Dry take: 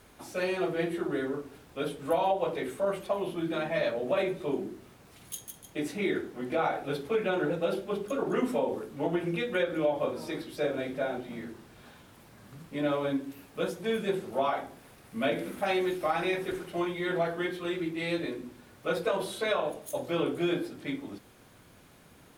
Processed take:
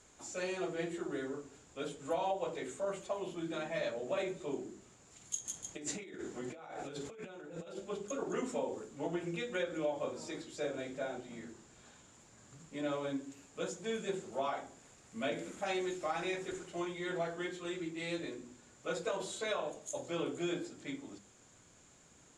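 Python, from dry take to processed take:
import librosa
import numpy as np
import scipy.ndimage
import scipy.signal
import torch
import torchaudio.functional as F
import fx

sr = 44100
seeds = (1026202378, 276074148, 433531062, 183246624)

y = fx.hum_notches(x, sr, base_hz=50, count=5)
y = fx.over_compress(y, sr, threshold_db=-38.0, ratio=-1.0, at=(5.44, 7.76), fade=0.02)
y = fx.ladder_lowpass(y, sr, hz=7400.0, resonance_pct=85)
y = F.gain(torch.from_numpy(y), 5.0).numpy()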